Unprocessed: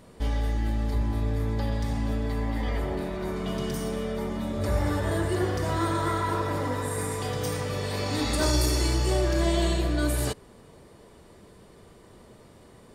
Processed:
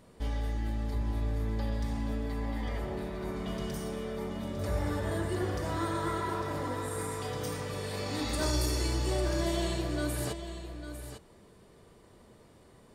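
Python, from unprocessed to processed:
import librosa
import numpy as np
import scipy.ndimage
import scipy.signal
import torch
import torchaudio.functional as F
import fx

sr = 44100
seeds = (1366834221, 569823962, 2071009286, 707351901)

y = x + 10.0 ** (-10.5 / 20.0) * np.pad(x, (int(851 * sr / 1000.0), 0))[:len(x)]
y = y * librosa.db_to_amplitude(-6.0)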